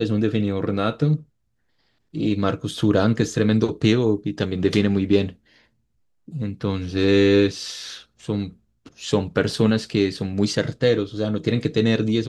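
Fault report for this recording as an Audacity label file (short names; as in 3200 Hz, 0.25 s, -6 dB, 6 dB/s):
9.510000	9.510000	gap 2.1 ms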